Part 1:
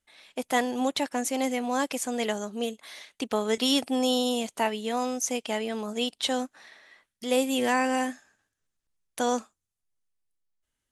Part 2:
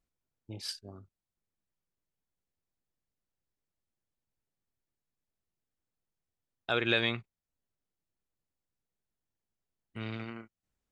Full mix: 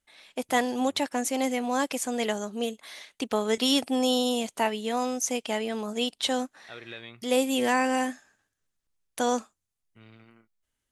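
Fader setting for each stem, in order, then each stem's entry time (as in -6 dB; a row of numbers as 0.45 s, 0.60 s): +0.5 dB, -14.0 dB; 0.00 s, 0.00 s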